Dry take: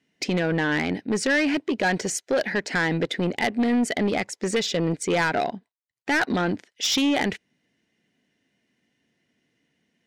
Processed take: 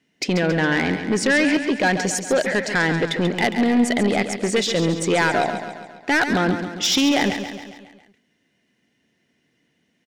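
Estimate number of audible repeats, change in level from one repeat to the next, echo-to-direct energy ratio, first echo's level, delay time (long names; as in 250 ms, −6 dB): 6, −5.0 dB, −7.5 dB, −9.0 dB, 137 ms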